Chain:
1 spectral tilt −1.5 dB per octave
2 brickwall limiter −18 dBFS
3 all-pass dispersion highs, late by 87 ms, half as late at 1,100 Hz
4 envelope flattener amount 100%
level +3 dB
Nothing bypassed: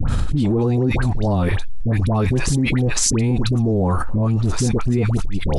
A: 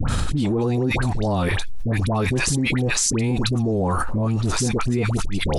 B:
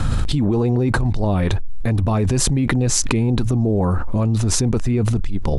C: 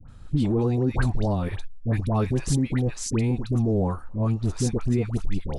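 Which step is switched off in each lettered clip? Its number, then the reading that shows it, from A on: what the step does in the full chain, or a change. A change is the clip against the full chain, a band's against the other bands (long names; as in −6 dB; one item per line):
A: 1, 125 Hz band −4.0 dB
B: 3, change in crest factor +5.0 dB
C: 4, change in momentary loudness spread +2 LU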